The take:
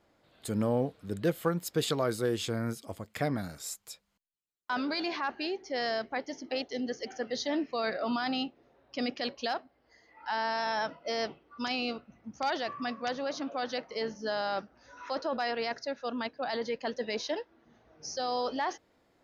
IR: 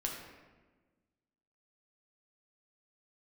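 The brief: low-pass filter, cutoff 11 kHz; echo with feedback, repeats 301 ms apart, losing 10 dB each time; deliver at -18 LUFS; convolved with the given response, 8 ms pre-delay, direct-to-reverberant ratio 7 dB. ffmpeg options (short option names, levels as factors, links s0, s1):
-filter_complex "[0:a]lowpass=11000,aecho=1:1:301|602|903|1204:0.316|0.101|0.0324|0.0104,asplit=2[s0][s1];[1:a]atrim=start_sample=2205,adelay=8[s2];[s1][s2]afir=irnorm=-1:irlink=0,volume=0.355[s3];[s0][s3]amix=inputs=2:normalize=0,volume=5.31"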